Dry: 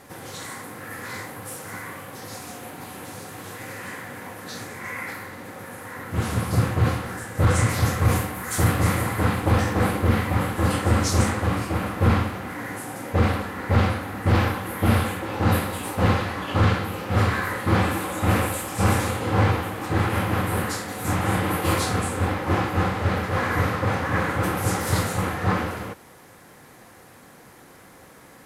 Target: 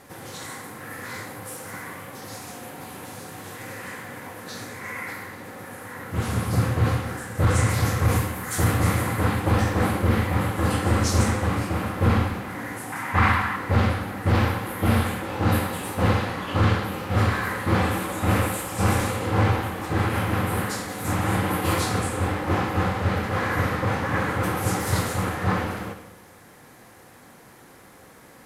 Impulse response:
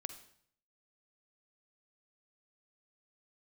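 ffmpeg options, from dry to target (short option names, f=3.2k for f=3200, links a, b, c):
-filter_complex "[0:a]asettb=1/sr,asplit=3[a][b][c];[a]atrim=end=12.924[d];[b]atrim=start=12.92:end=13.56,asetpts=PTS-STARTPTS,afade=t=in:d=0.004:c=qsin,afade=t=out:st=0.636:d=0.004:c=qsin,equalizer=f=500:t=o:w=1:g=-11,equalizer=f=1k:t=o:w=1:g=11,equalizer=f=2k:t=o:w=1:g=9[e];[c]atrim=start=13.556[f];[d][e]acrossfade=d=0.004:c1=hsin:c2=qsin[g];[g][f]acrossfade=d=0.004:c1=qsin:c2=hsin[h];[1:a]atrim=start_sample=2205,asetrate=32193,aresample=44100[i];[h][i]afir=irnorm=-1:irlink=0"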